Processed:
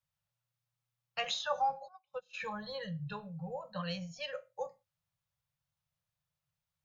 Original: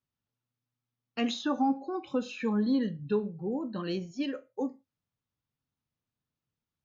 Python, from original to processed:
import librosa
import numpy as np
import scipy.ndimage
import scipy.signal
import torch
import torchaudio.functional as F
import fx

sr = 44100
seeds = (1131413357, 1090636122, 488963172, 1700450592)

y = scipy.signal.sosfilt(scipy.signal.ellip(3, 1.0, 40, [170.0, 530.0], 'bandstop', fs=sr, output='sos'), x)
y = fx.upward_expand(y, sr, threshold_db=-52.0, expansion=2.5, at=(1.87, 2.33), fade=0.02)
y = y * librosa.db_to_amplitude(1.0)